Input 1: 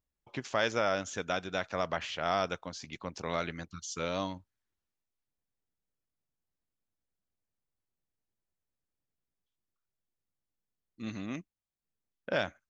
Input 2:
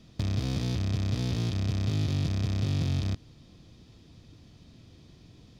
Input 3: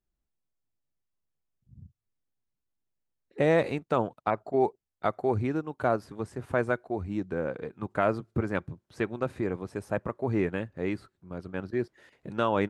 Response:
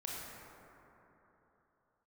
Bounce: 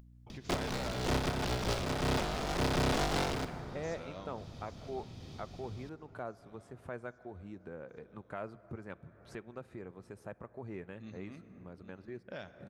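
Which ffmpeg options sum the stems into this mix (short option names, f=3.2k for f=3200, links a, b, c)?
-filter_complex "[0:a]lowshelf=f=390:g=6.5,aeval=exprs='val(0)+0.00126*(sin(2*PI*60*n/s)+sin(2*PI*2*60*n/s)/2+sin(2*PI*3*60*n/s)/3+sin(2*PI*4*60*n/s)/4+sin(2*PI*5*60*n/s)/5)':c=same,volume=-17.5dB,asplit=4[a][b][c][d];[b]volume=-10.5dB[e];[c]volume=-12.5dB[f];[1:a]aeval=exprs='(mod(22.4*val(0)+1,2)-1)/22.4':c=same,acrossover=split=6300[g][h];[h]acompressor=threshold=-50dB:ratio=4:attack=1:release=60[i];[g][i]amix=inputs=2:normalize=0,asoftclip=type=hard:threshold=-28.5dB,adelay=300,volume=1.5dB,asplit=2[j][k];[k]volume=-11.5dB[l];[2:a]adelay=350,volume=-16.5dB,asplit=2[m][n];[n]volume=-18.5dB[o];[d]apad=whole_len=259837[p];[j][p]sidechaincompress=threshold=-55dB:ratio=5:attack=43:release=136[q];[3:a]atrim=start_sample=2205[r];[e][l][o]amix=inputs=3:normalize=0[s];[s][r]afir=irnorm=-1:irlink=0[t];[f]aecho=0:1:810|1620|2430|3240|4050|4860|5670|6480:1|0.56|0.314|0.176|0.0983|0.0551|0.0308|0.0173[u];[a][q][m][t][u]amix=inputs=5:normalize=0,equalizer=f=300:t=o:w=0.21:g=-4.5,acompressor=mode=upward:threshold=-41dB:ratio=2.5"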